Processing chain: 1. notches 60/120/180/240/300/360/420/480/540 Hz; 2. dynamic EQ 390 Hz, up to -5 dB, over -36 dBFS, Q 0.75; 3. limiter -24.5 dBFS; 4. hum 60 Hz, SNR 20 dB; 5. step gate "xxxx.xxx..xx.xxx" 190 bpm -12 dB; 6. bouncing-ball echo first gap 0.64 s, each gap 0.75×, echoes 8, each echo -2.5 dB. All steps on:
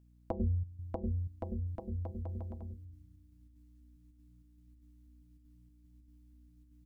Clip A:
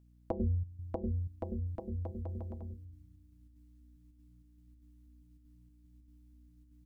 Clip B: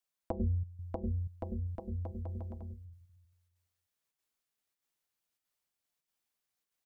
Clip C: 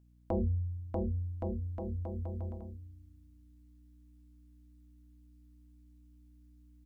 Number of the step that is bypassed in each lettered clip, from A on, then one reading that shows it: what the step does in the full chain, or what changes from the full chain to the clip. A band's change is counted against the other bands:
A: 2, 500 Hz band +2.0 dB; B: 4, momentary loudness spread change -2 LU; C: 5, 500 Hz band +2.5 dB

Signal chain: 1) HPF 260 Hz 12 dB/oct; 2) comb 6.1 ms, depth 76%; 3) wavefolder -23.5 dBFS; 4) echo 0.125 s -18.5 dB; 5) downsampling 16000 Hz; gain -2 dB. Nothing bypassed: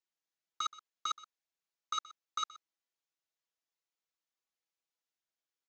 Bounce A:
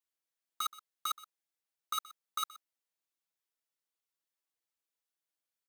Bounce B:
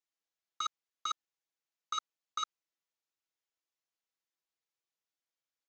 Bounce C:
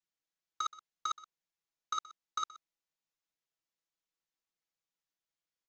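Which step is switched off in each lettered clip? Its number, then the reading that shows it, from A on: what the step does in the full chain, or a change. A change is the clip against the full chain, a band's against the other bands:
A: 5, 8 kHz band +2.5 dB; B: 4, momentary loudness spread change -3 LU; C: 1, 4 kHz band -3.0 dB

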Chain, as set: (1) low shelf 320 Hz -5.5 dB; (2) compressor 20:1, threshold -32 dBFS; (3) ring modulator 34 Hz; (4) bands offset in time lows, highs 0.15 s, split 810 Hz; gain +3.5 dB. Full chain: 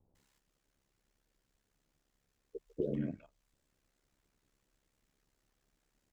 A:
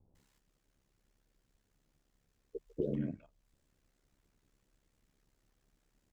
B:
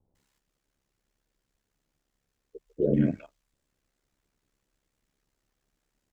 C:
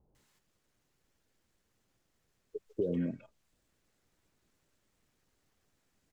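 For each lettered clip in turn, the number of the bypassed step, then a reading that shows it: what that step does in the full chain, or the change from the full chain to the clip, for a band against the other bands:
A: 1, 2 kHz band -2.5 dB; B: 2, mean gain reduction 10.0 dB; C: 3, crest factor change -3.0 dB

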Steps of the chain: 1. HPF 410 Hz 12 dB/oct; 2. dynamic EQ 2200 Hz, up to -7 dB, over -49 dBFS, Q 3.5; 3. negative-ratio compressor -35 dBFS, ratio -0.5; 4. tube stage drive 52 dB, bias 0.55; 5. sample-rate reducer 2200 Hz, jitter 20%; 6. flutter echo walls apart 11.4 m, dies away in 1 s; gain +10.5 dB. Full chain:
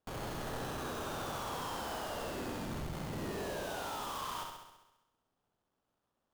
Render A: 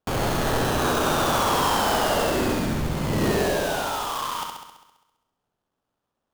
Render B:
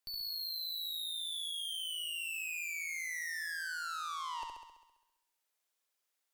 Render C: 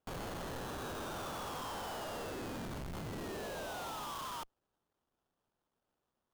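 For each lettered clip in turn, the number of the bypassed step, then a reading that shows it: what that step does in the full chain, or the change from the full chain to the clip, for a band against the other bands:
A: 4, crest factor change +2.5 dB; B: 5, 1 kHz band -11.5 dB; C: 6, echo-to-direct -2.0 dB to none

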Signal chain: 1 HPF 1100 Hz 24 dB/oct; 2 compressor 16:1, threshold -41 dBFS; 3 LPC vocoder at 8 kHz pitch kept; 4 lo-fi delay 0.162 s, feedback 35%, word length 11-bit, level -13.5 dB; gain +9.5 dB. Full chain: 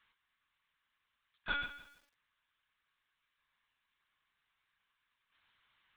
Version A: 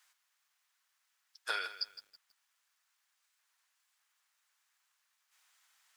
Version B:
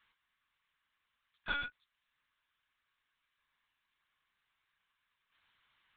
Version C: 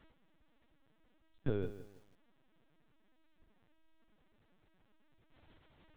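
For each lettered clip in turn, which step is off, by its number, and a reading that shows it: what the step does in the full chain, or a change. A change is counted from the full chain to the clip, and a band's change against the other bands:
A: 3, 250 Hz band -14.0 dB; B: 4, momentary loudness spread change -4 LU; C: 1, 125 Hz band +33.5 dB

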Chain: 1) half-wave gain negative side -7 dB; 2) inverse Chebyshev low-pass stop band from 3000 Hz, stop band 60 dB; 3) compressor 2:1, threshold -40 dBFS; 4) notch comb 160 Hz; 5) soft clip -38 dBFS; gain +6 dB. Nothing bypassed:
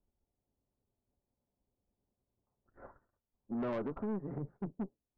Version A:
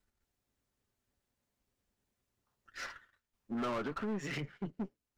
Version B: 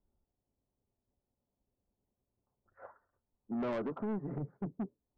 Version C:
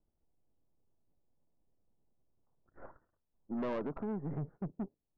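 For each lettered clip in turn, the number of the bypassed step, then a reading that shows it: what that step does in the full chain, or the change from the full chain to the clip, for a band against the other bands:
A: 2, 2 kHz band +12.0 dB; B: 1, distortion -9 dB; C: 4, 125 Hz band +2.0 dB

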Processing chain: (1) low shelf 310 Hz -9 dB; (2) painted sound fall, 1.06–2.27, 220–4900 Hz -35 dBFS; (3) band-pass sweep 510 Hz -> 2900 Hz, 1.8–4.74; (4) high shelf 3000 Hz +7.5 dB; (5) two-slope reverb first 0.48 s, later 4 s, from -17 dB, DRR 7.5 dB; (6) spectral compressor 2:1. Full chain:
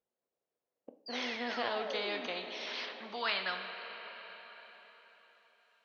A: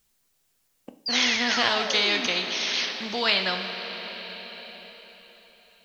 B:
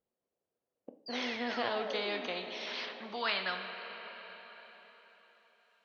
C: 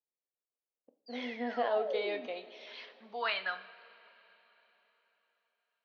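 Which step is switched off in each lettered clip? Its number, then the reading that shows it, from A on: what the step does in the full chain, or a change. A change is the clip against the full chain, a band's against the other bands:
3, loudness change +13.0 LU; 1, 250 Hz band +2.0 dB; 6, 4 kHz band -6.5 dB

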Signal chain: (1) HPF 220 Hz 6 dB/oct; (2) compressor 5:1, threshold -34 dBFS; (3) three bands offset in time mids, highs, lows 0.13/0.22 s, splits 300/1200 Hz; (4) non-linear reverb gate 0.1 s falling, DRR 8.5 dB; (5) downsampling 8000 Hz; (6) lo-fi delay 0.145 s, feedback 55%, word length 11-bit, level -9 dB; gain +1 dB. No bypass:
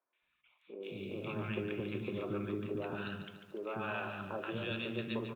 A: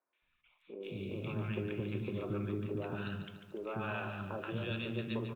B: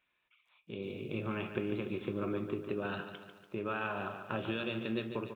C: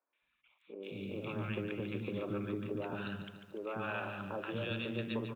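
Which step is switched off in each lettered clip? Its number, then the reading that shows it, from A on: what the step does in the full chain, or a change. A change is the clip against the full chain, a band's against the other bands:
1, crest factor change -1.5 dB; 3, crest factor change +3.0 dB; 4, 125 Hz band +1.5 dB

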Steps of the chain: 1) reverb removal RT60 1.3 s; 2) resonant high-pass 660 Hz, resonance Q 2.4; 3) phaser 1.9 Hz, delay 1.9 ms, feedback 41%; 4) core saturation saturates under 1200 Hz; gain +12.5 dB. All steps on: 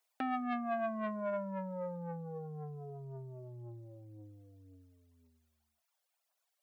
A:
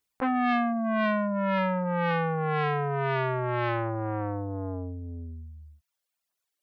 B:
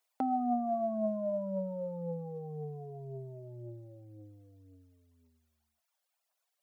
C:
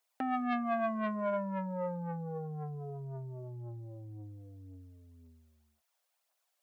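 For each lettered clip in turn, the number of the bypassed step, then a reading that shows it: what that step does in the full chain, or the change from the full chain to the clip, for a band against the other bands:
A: 2, 2 kHz band +4.5 dB; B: 4, crest factor change -3.5 dB; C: 1, loudness change +3.0 LU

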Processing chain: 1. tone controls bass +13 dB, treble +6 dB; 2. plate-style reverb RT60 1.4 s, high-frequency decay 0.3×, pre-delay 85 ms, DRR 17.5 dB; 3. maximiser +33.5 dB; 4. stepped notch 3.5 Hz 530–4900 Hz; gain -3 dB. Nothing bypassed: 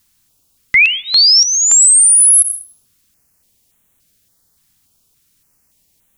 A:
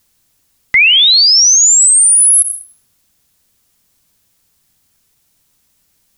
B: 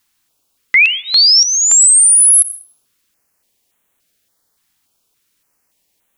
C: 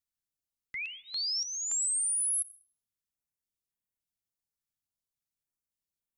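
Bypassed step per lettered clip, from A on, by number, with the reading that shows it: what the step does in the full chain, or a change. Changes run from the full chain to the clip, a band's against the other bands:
4, loudness change +1.5 LU; 1, momentary loudness spread change -3 LU; 3, momentary loudness spread change +3 LU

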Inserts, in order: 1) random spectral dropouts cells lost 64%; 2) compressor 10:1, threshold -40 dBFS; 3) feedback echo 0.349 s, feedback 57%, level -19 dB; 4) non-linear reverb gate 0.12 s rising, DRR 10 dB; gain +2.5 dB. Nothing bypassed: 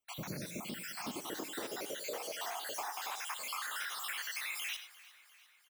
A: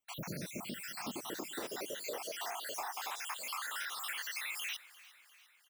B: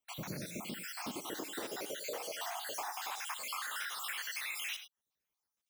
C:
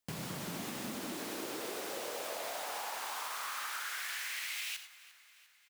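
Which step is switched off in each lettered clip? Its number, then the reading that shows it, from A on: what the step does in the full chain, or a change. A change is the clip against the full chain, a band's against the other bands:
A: 4, echo-to-direct -9.0 dB to -17.5 dB; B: 3, momentary loudness spread change -1 LU; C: 1, crest factor change -2.0 dB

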